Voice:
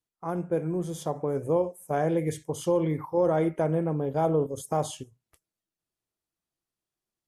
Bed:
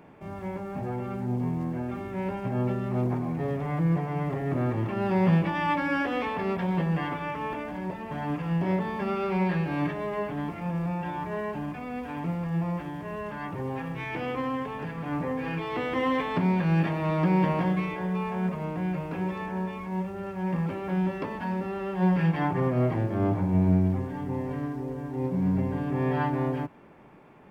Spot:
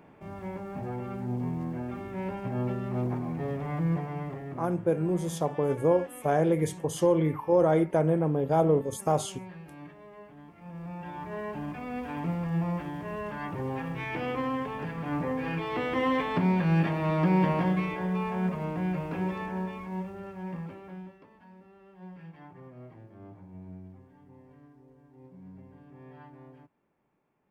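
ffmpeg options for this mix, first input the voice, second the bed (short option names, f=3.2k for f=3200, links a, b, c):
-filter_complex "[0:a]adelay=4350,volume=1.5dB[a];[1:a]volume=14.5dB,afade=t=out:st=3.93:d=0.81:silence=0.177828,afade=t=in:st=10.53:d=1.44:silence=0.133352,afade=t=out:st=19.27:d=1.91:silence=0.0749894[b];[a][b]amix=inputs=2:normalize=0"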